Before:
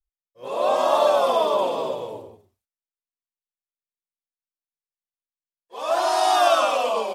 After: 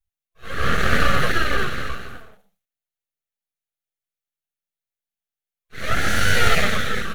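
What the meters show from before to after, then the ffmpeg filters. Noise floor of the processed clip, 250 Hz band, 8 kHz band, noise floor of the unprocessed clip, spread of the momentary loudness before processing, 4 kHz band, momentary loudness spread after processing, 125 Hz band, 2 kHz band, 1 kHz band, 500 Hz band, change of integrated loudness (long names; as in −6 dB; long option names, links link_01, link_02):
below −85 dBFS, +7.5 dB, +3.5 dB, below −85 dBFS, 14 LU, +3.0 dB, 15 LU, +25.0 dB, +12.0 dB, −5.5 dB, −9.0 dB, −0.5 dB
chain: -af "afftfilt=real='re*(1-between(b*sr/4096,160,520))':imag='im*(1-between(b*sr/4096,160,520))':win_size=4096:overlap=0.75,aeval=exprs='abs(val(0))':channel_layout=same,equalizer=frequency=315:width_type=o:width=0.33:gain=-10,equalizer=frequency=1000:width_type=o:width=0.33:gain=-10,equalizer=frequency=5000:width_type=o:width=0.33:gain=-7,equalizer=frequency=8000:width_type=o:width=0.33:gain=-5,volume=5dB"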